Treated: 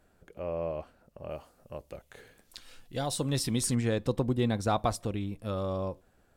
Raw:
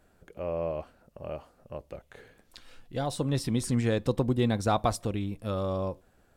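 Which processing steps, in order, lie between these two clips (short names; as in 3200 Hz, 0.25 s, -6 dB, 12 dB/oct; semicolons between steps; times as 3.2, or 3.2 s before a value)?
1.29–3.74 high shelf 5100 Hz -> 2600 Hz +9 dB; gain -2 dB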